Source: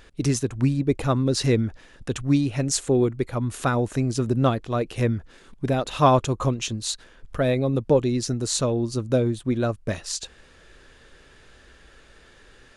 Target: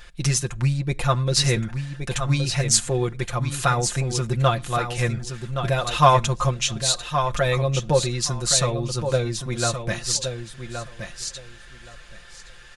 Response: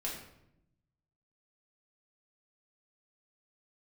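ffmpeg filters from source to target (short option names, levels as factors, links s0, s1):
-filter_complex "[0:a]equalizer=f=310:w=0.8:g=-14.5,aecho=1:1:5.7:0.73,aecho=1:1:1120|2240|3360:0.398|0.0677|0.0115,asplit=2[s0][s1];[1:a]atrim=start_sample=2205,afade=t=out:st=0.18:d=0.01,atrim=end_sample=8379[s2];[s1][s2]afir=irnorm=-1:irlink=0,volume=0.0668[s3];[s0][s3]amix=inputs=2:normalize=0,volume=1.68"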